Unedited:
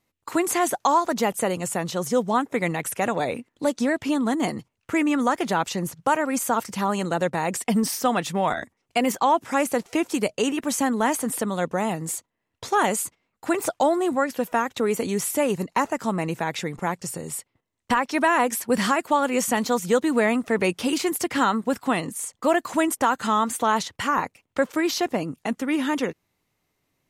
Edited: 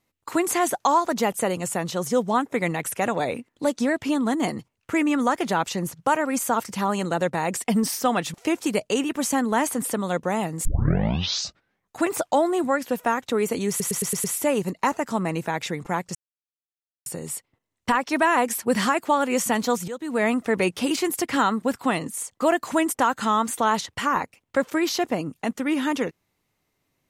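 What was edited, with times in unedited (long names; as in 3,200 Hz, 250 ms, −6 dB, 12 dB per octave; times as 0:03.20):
0:08.34–0:09.82: remove
0:12.13: tape start 1.39 s
0:15.17: stutter 0.11 s, 6 plays
0:17.08: splice in silence 0.91 s
0:19.90–0:20.28: fade in quadratic, from −14 dB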